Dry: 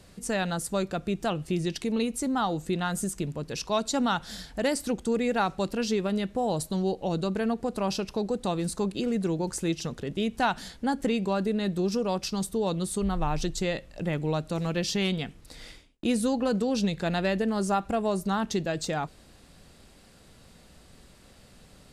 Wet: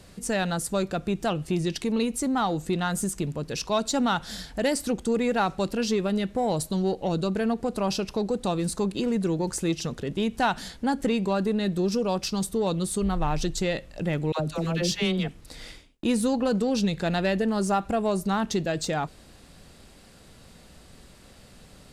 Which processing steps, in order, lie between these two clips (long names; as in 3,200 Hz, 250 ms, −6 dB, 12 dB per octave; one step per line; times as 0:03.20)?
in parallel at −7 dB: soft clipping −27.5 dBFS, distortion −10 dB
0:14.32–0:15.28: on the sum: all-pass dispersion lows, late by 79 ms, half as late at 620 Hz